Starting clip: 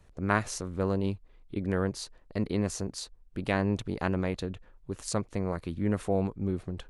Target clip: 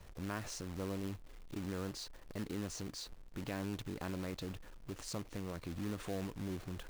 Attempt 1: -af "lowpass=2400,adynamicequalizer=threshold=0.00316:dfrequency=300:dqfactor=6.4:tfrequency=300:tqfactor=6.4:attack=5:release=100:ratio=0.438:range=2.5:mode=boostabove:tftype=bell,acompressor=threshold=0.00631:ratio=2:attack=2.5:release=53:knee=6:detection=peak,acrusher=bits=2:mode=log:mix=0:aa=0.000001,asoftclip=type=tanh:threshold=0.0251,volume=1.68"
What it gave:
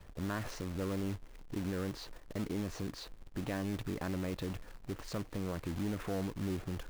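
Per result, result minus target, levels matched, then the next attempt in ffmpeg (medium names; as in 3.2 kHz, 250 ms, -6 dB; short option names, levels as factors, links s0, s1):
8 kHz band -6.5 dB; compression: peak gain reduction -5.5 dB
-af "lowpass=6500,adynamicequalizer=threshold=0.00316:dfrequency=300:dqfactor=6.4:tfrequency=300:tqfactor=6.4:attack=5:release=100:ratio=0.438:range=2.5:mode=boostabove:tftype=bell,acompressor=threshold=0.00631:ratio=2:attack=2.5:release=53:knee=6:detection=peak,acrusher=bits=2:mode=log:mix=0:aa=0.000001,asoftclip=type=tanh:threshold=0.0251,volume=1.68"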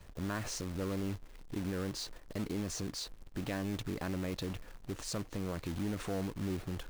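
compression: peak gain reduction -5.5 dB
-af "lowpass=6500,adynamicequalizer=threshold=0.00316:dfrequency=300:dqfactor=6.4:tfrequency=300:tqfactor=6.4:attack=5:release=100:ratio=0.438:range=2.5:mode=boostabove:tftype=bell,acompressor=threshold=0.00178:ratio=2:attack=2.5:release=53:knee=6:detection=peak,acrusher=bits=2:mode=log:mix=0:aa=0.000001,asoftclip=type=tanh:threshold=0.0251,volume=1.68"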